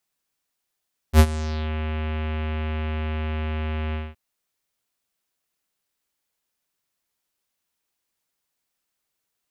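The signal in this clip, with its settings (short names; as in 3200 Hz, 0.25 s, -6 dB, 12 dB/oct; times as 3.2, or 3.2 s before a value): synth note square D#2 24 dB/oct, low-pass 2800 Hz, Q 2.1, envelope 2.5 oct, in 0.57 s, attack 66 ms, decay 0.06 s, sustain -17.5 dB, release 0.21 s, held 2.81 s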